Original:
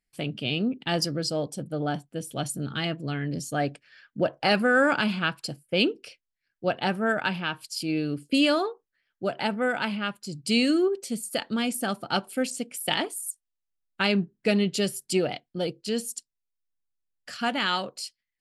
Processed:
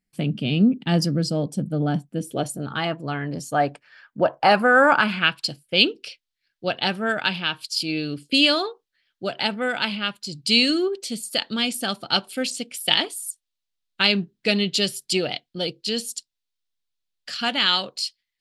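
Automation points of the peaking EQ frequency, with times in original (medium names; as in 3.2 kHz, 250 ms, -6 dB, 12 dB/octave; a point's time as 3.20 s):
peaking EQ +12 dB 1.3 oct
2.12 s 190 Hz
2.66 s 940 Hz
4.92 s 940 Hz
5.41 s 3.8 kHz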